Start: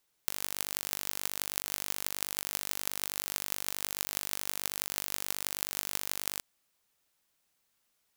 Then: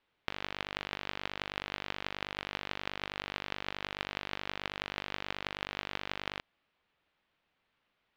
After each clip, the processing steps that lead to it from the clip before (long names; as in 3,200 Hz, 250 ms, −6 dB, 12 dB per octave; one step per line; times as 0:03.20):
low-pass filter 3,300 Hz 24 dB per octave
level +4.5 dB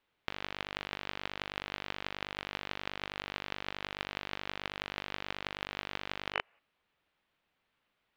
gain on a spectral selection 0:06.34–0:06.59, 390–3,000 Hz +11 dB
level −1 dB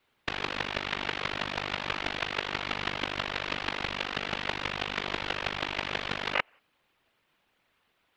random phases in short frames
level +7.5 dB